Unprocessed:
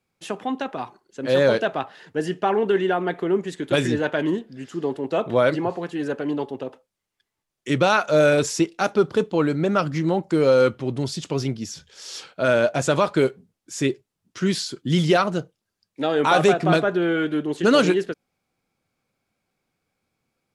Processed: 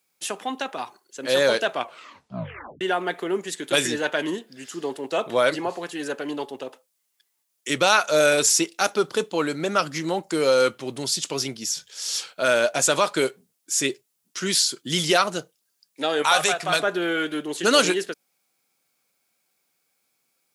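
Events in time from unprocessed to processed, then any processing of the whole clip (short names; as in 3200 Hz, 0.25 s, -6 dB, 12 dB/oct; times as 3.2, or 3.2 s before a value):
1.72 tape stop 1.09 s
16.22–16.8 bell 290 Hz -13.5 dB 1.3 oct
whole clip: HPF 91 Hz; RIAA curve recording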